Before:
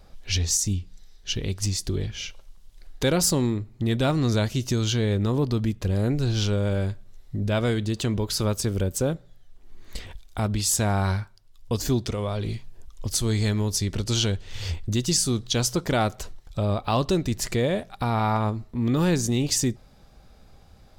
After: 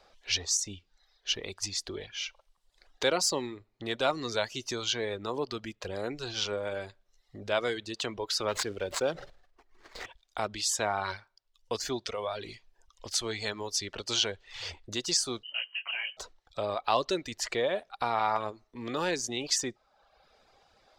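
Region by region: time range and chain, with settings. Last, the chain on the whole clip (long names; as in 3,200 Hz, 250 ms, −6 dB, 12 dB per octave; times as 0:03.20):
0:08.48–0:10.06: running median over 15 samples + high-shelf EQ 2,300 Hz +8.5 dB + level that may fall only so fast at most 33 dB per second
0:15.43–0:16.17: downward compressor 5 to 1, threshold −25 dBFS + voice inversion scrambler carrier 3,000 Hz + micro pitch shift up and down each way 33 cents
whole clip: reverb reduction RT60 0.77 s; three-way crossover with the lows and the highs turned down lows −21 dB, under 400 Hz, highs −17 dB, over 6,800 Hz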